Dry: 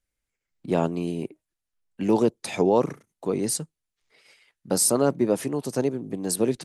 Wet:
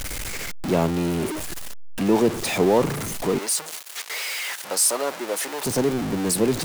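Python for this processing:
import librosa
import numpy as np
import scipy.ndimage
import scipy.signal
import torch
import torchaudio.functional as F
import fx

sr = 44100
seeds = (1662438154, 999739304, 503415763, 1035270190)

y = x + 0.5 * 10.0 ** (-23.0 / 20.0) * np.sign(x)
y = fx.highpass(y, sr, hz=660.0, slope=12, at=(3.38, 5.64))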